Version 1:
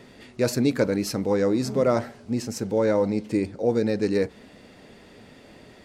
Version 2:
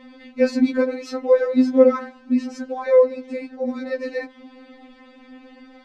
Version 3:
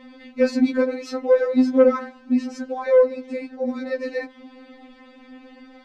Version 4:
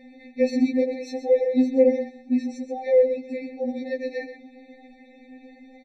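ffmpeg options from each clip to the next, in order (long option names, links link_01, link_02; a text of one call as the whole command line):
ffmpeg -i in.wav -af "lowpass=3100,afftfilt=real='re*3.46*eq(mod(b,12),0)':imag='im*3.46*eq(mod(b,12),0)':win_size=2048:overlap=0.75,volume=5dB" out.wav
ffmpeg -i in.wav -af "asoftclip=type=tanh:threshold=-5dB" out.wav
ffmpeg -i in.wav -af "aecho=1:1:127:0.282,afftfilt=real='re*eq(mod(floor(b*sr/1024/890),2),0)':imag='im*eq(mod(floor(b*sr/1024/890),2),0)':win_size=1024:overlap=0.75,volume=-2.5dB" out.wav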